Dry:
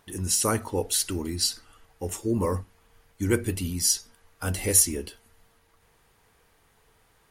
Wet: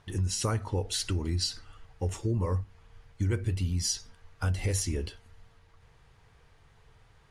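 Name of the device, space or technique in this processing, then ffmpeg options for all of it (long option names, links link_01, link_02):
jukebox: -af "lowpass=5800,lowshelf=frequency=170:width_type=q:width=1.5:gain=7.5,acompressor=threshold=-26dB:ratio=4"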